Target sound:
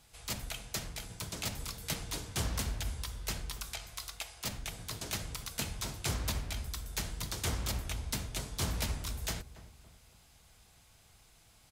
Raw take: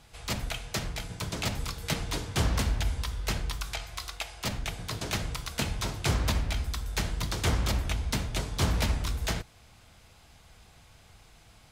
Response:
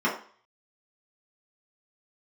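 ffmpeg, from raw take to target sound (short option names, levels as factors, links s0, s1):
-filter_complex "[0:a]highshelf=f=5800:g=11.5,asplit=2[s0][s1];[s1]adelay=280,lowpass=f=1100:p=1,volume=0.2,asplit=2[s2][s3];[s3]adelay=280,lowpass=f=1100:p=1,volume=0.47,asplit=2[s4][s5];[s5]adelay=280,lowpass=f=1100:p=1,volume=0.47,asplit=2[s6][s7];[s7]adelay=280,lowpass=f=1100:p=1,volume=0.47[s8];[s0][s2][s4][s6][s8]amix=inputs=5:normalize=0,volume=0.376"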